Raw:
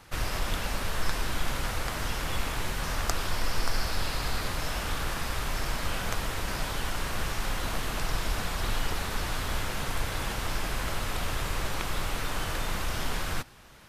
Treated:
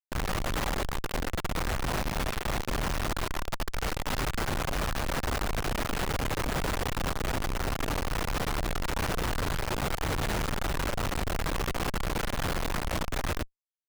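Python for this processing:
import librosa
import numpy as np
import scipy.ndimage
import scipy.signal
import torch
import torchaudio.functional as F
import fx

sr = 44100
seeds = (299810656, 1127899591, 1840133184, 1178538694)

y = fx.schmitt(x, sr, flips_db=-34.0)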